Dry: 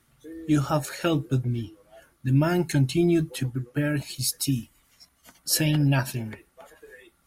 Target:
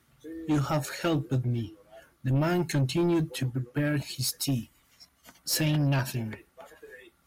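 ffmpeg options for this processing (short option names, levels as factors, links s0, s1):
-af "highpass=45,equalizer=f=9900:t=o:w=0.66:g=-4.5,asoftclip=type=tanh:threshold=0.0944"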